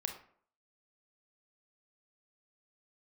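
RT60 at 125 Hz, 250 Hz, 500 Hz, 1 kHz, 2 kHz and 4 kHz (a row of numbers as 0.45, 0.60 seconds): 0.50, 0.55, 0.55, 0.55, 0.45, 0.35 seconds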